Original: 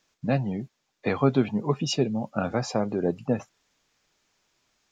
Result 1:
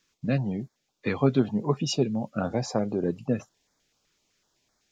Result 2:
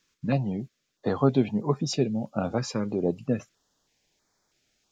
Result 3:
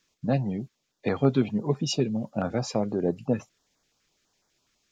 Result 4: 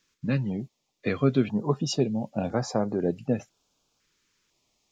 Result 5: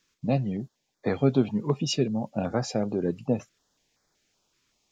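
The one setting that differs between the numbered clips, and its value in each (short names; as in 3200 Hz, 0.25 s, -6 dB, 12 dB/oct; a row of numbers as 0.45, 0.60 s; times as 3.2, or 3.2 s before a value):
stepped notch, rate: 7.9, 3.1, 12, 2, 5.3 Hz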